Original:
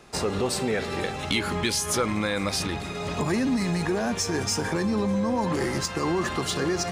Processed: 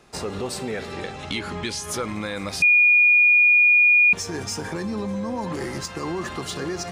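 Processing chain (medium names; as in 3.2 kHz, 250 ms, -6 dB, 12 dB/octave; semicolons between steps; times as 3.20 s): 0.92–1.84 s: low-pass 8.3 kHz 12 dB/octave; 2.62–4.13 s: bleep 2.44 kHz -9 dBFS; trim -3 dB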